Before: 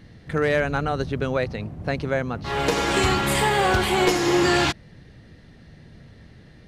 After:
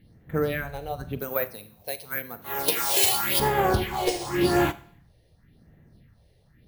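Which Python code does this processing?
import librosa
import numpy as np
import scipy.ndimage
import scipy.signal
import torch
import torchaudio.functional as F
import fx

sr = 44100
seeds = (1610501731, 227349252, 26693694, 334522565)

y = fx.phaser_stages(x, sr, stages=4, low_hz=210.0, high_hz=4800.0, hz=0.91, feedback_pct=25)
y = np.repeat(scipy.signal.resample_poly(y, 1, 3), 3)[:len(y)]
y = fx.riaa(y, sr, side='recording', at=(1.19, 3.4))
y = fx.rev_schroeder(y, sr, rt60_s=0.56, comb_ms=33, drr_db=10.0)
y = fx.upward_expand(y, sr, threshold_db=-34.0, expansion=1.5)
y = y * librosa.db_to_amplitude(-1.0)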